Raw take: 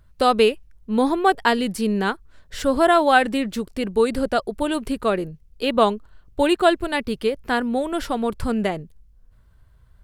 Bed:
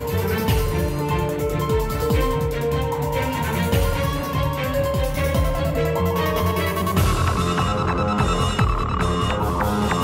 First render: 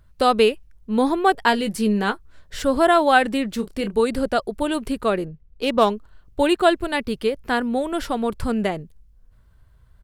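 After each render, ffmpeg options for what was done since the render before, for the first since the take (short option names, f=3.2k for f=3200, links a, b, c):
-filter_complex "[0:a]asettb=1/sr,asplit=3[a][b][c];[a]atrim=end=1.474[d];[b]atrim=start=1.47:end=2.59,asetpts=PTS-STARTPTS,afade=t=in:d=0.004:c=qsin,afade=t=out:st=1.116:d=0.004:c=qsin,asplit=2[e][f];[f]adelay=14,volume=-8.5dB[g];[e][g]amix=inputs=2:normalize=0,atrim=end_sample=49392[h];[c]atrim=start=2.586[i];[d][h]acrossfade=d=0.004:c1=hsin:c2=qsin[j];[j][i]acrossfade=d=0.004:c1=qsin:c2=hsin,asplit=3[k][l][m];[k]afade=t=out:st=3.58:d=0.02[n];[l]asplit=2[o][p];[p]adelay=30,volume=-9.5dB[q];[o][q]amix=inputs=2:normalize=0,afade=t=in:st=3.58:d=0.02,afade=t=out:st=4.02:d=0.02[r];[m]afade=t=in:st=4.02:d=0.02[s];[n][r][s]amix=inputs=3:normalize=0,asettb=1/sr,asplit=3[t][u][v];[t]atrim=end=5.254[w];[u]atrim=start=5.25:end=5.9,asetpts=PTS-STARTPTS,afade=t=in:d=0.004:c=qsin,afade=t=out:st=0.646:d=0.004:c=qsin,adynamicsmooth=sensitivity=3.5:basefreq=2.8k[x];[v]atrim=start=5.896[y];[w][x]acrossfade=d=0.004:c1=hsin:c2=qsin[z];[z][y]acrossfade=d=0.004:c1=qsin:c2=hsin"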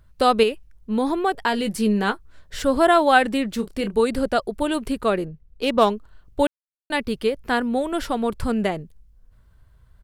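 -filter_complex "[0:a]asettb=1/sr,asplit=3[a][b][c];[a]atrim=end=0.434[d];[b]atrim=start=0.43:end=1.65,asetpts=PTS-STARTPTS,afade=t=in:d=0.004:c=qsin,afade=t=out:st=1.216:d=0.004:c=qsin,acompressor=threshold=-19dB:ratio=2:attack=3.2:release=140:knee=1:detection=peak[e];[c]atrim=start=1.646[f];[d][e]acrossfade=d=0.004:c1=hsin:c2=qsin[g];[g][f]acrossfade=d=0.004:c1=qsin:c2=hsin,asplit=3[h][i][j];[h]atrim=end=6.47,asetpts=PTS-STARTPTS,afade=t=out:st=6.466:d=0.004:c=hsin[k];[i]atrim=start=6.47:end=6.9,asetpts=PTS-STARTPTS,volume=0[l];[j]atrim=start=6.9,asetpts=PTS-STARTPTS,afade=t=in:d=0.004:c=hsin[m];[k][l][m]concat=n=3:v=0:a=1"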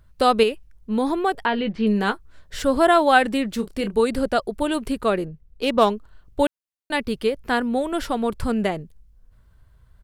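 -filter_complex "[0:a]asettb=1/sr,asplit=3[a][b][c];[a]atrim=end=1.454[d];[b]atrim=start=1.45:end=1.87,asetpts=PTS-STARTPTS,afade=t=in:d=0.004:c=qsin,afade=t=out:st=0.416:d=0.004:c=qsin,lowpass=f=3.4k:w=0.5412,lowpass=f=3.4k:w=1.3066[e];[c]atrim=start=1.866[f];[d][e]acrossfade=d=0.004:c1=hsin:c2=qsin[g];[g][f]acrossfade=d=0.004:c1=qsin:c2=hsin"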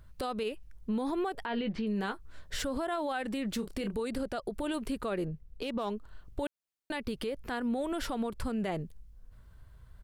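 -af "acompressor=threshold=-25dB:ratio=3,alimiter=level_in=1.5dB:limit=-24dB:level=0:latency=1:release=84,volume=-1.5dB"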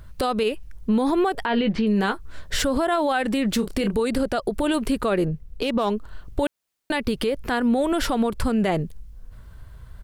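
-af "volume=11.5dB"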